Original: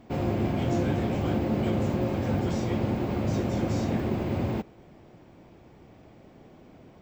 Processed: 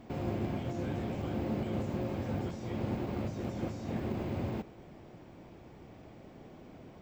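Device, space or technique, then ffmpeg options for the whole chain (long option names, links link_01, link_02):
de-esser from a sidechain: -filter_complex "[0:a]asplit=2[link_01][link_02];[link_02]highpass=4300,apad=whole_len=309366[link_03];[link_01][link_03]sidechaincompress=threshold=-58dB:ratio=8:attack=0.88:release=31"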